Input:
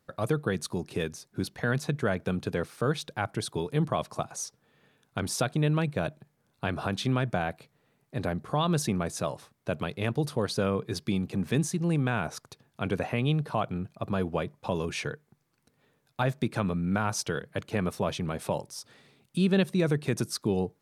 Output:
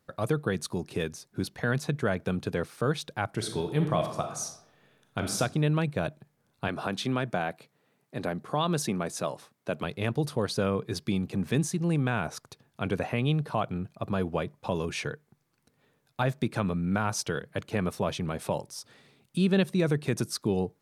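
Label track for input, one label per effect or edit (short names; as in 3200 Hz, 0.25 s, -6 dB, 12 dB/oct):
3.290000	5.370000	reverb throw, RT60 0.84 s, DRR 4.5 dB
6.680000	9.840000	HPF 160 Hz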